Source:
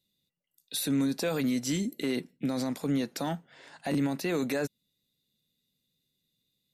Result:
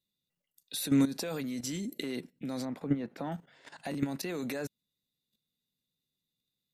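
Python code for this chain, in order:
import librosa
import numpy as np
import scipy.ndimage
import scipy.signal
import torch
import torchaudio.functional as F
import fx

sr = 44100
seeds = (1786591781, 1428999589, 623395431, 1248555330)

y = fx.curve_eq(x, sr, hz=(790.0, 2200.0, 6000.0), db=(0, -3, -19), at=(2.65, 3.32))
y = fx.level_steps(y, sr, step_db=13)
y = F.gain(torch.from_numpy(y), 3.5).numpy()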